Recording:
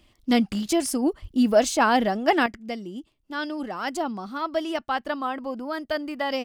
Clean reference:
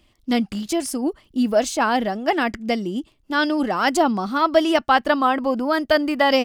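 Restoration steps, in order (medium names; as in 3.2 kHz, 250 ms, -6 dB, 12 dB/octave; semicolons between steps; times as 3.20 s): de-plosive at 1.21 s; trim 0 dB, from 2.46 s +10 dB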